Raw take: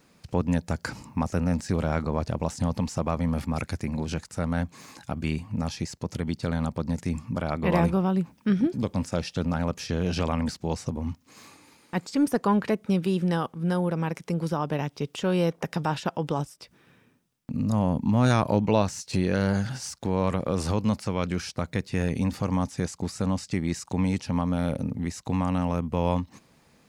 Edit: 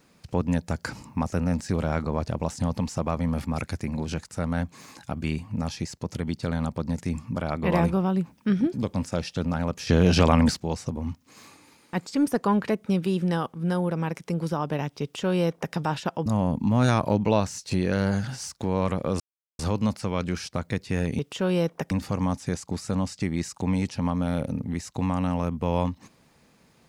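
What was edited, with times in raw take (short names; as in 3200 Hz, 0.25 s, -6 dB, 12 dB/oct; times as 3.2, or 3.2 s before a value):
9.87–10.6 gain +8 dB
15.02–15.74 copy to 22.22
16.26–17.68 cut
20.62 insert silence 0.39 s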